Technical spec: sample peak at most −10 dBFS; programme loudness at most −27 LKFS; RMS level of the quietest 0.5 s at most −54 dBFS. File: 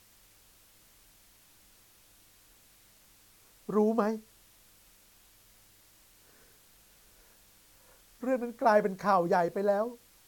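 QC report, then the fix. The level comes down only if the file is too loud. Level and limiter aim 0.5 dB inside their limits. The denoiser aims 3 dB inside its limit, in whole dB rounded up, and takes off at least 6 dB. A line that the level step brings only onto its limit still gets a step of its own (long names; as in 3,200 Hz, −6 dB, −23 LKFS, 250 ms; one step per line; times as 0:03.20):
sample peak −12.5 dBFS: in spec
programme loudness −29.0 LKFS: in spec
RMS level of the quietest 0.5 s −61 dBFS: in spec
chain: no processing needed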